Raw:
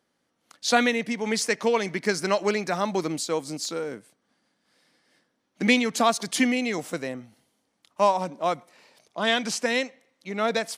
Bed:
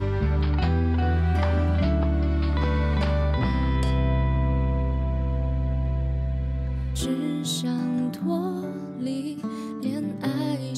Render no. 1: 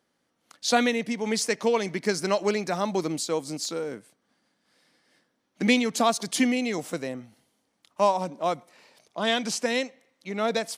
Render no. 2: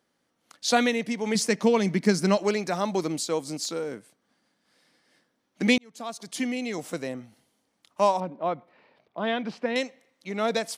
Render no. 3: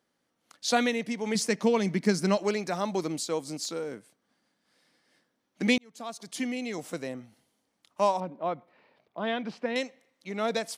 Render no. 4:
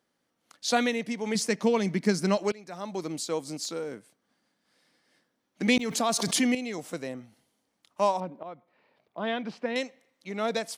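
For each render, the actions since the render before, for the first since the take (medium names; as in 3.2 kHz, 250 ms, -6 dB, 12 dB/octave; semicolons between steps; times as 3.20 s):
dynamic bell 1.7 kHz, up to -4 dB, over -39 dBFS, Q 0.92
1.35–2.37 s: peaking EQ 190 Hz +9.5 dB 1 oct; 5.78–7.10 s: fade in; 8.20–9.76 s: distance through air 400 m
trim -3 dB
2.52–3.28 s: fade in linear, from -21.5 dB; 5.68–6.55 s: level flattener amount 70%; 8.43–9.20 s: fade in, from -13 dB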